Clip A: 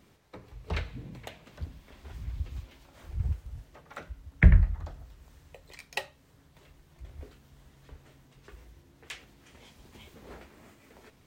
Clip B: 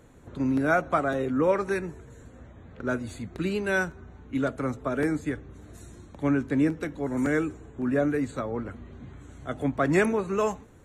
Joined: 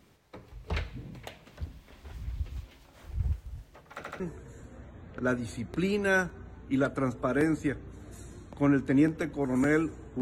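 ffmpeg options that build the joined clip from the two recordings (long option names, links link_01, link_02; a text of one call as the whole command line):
ffmpeg -i cue0.wav -i cue1.wav -filter_complex "[0:a]apad=whole_dur=10.21,atrim=end=10.21,asplit=3[link_01][link_02][link_03];[link_01]atrim=end=4.042[link_04];[link_02]atrim=start=3.958:end=4.042[link_05];[link_03]atrim=start=3.958:end=4.042[link_06];[1:a]atrim=start=1.818:end=7.83[link_07];[link_04][link_05]acrossfade=duration=0.004:curve1=hsin:curve2=hsin[link_08];[link_08][link_06]acrossfade=duration=0.004:curve1=hsin:curve2=hsin[link_09];[link_09][link_07]acrossfade=duration=0.004:curve1=hsin:curve2=hsin" out.wav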